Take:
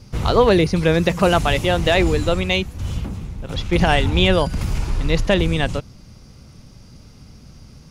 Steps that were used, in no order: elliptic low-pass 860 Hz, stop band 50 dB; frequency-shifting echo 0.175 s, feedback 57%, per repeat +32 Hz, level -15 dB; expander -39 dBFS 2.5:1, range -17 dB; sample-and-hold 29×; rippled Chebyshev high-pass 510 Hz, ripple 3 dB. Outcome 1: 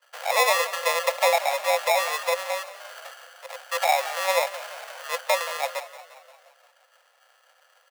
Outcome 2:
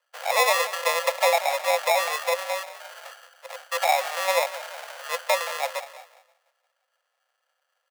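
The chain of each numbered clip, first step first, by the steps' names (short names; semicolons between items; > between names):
expander > elliptic low-pass > sample-and-hold > frequency-shifting echo > rippled Chebyshev high-pass; elliptic low-pass > frequency-shifting echo > sample-and-hold > rippled Chebyshev high-pass > expander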